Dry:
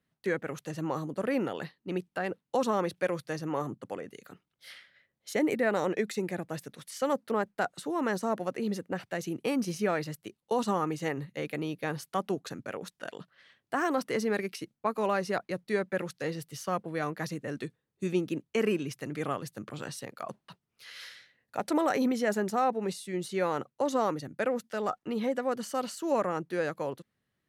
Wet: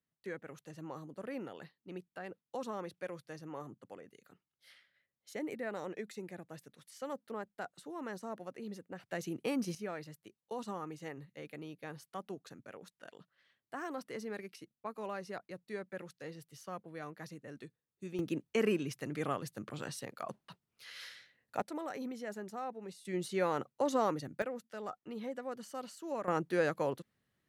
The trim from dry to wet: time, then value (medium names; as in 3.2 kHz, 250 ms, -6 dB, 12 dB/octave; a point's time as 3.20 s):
-12.5 dB
from 9.09 s -5 dB
from 9.75 s -12.5 dB
from 18.19 s -3 dB
from 21.62 s -14 dB
from 23.05 s -3 dB
from 24.42 s -11 dB
from 26.28 s 0 dB